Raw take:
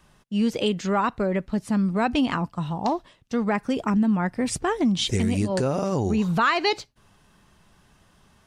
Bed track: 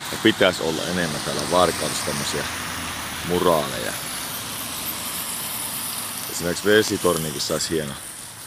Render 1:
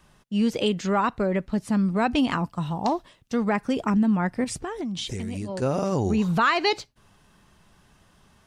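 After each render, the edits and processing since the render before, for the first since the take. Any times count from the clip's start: 2.18–3.49 s: treble shelf 9.3 kHz +7 dB; 4.44–5.62 s: compression, threshold -28 dBFS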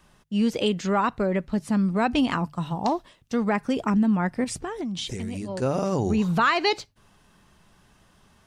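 hum notches 50/100/150 Hz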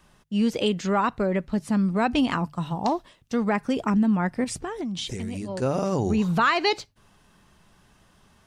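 no audible change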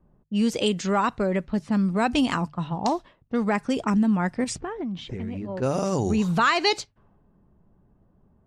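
level-controlled noise filter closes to 480 Hz, open at -20.5 dBFS; dynamic bell 7.7 kHz, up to +8 dB, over -50 dBFS, Q 0.9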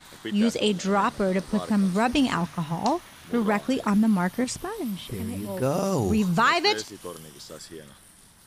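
add bed track -18 dB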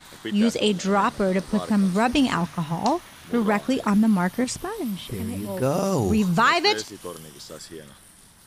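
trim +2 dB

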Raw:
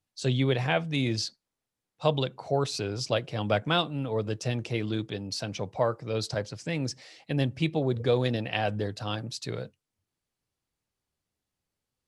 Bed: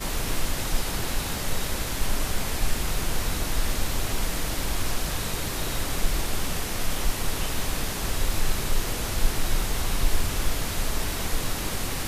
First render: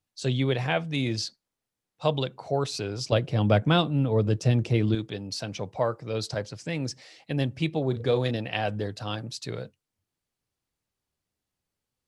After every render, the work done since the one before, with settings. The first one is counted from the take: 3.12–4.95 s: bass shelf 380 Hz +10 dB; 7.84–8.31 s: doubling 38 ms -12 dB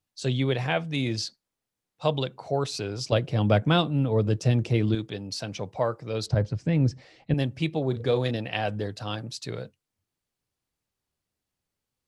6.26–7.34 s: RIAA curve playback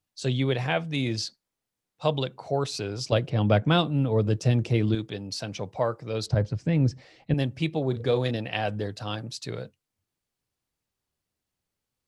3.29–3.70 s: low-pass 3.9 kHz -> 7.9 kHz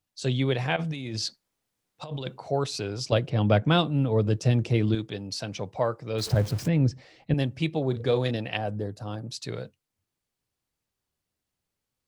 0.76–2.38 s: compressor with a negative ratio -33 dBFS; 6.18–6.68 s: jump at every zero crossing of -33.5 dBFS; 8.57–9.31 s: peaking EQ 2.9 kHz -14 dB 2.2 oct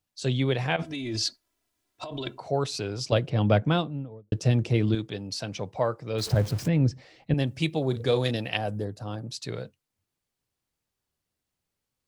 0.82–2.40 s: comb 3 ms, depth 94%; 3.48–4.32 s: studio fade out; 7.47–8.85 s: treble shelf 5 kHz +11 dB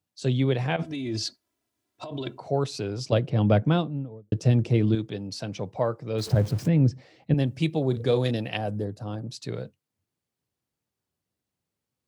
high-pass 92 Hz; tilt shelf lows +3.5 dB, about 640 Hz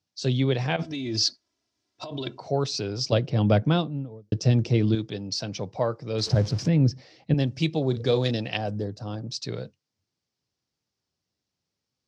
resonant low-pass 5.4 kHz, resonance Q 3.1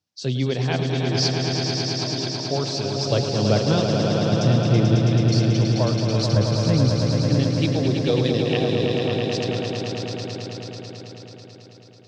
echo with a slow build-up 109 ms, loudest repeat 5, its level -6 dB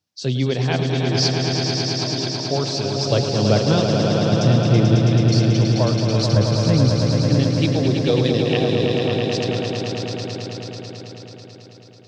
trim +2.5 dB

